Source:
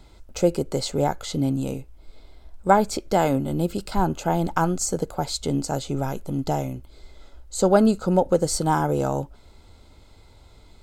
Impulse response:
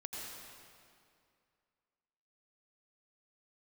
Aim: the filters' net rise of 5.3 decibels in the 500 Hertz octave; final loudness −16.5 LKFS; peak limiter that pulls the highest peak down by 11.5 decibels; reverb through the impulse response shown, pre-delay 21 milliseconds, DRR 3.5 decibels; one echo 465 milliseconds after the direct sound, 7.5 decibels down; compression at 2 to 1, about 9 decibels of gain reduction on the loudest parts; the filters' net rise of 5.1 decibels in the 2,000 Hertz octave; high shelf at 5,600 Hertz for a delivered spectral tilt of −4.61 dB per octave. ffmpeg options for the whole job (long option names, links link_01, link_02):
-filter_complex "[0:a]equalizer=frequency=500:width_type=o:gain=6,equalizer=frequency=2000:width_type=o:gain=6,highshelf=frequency=5600:gain=8,acompressor=threshold=-25dB:ratio=2,alimiter=limit=-20dB:level=0:latency=1,aecho=1:1:465:0.422,asplit=2[link_01][link_02];[1:a]atrim=start_sample=2205,adelay=21[link_03];[link_02][link_03]afir=irnorm=-1:irlink=0,volume=-3dB[link_04];[link_01][link_04]amix=inputs=2:normalize=0,volume=12dB"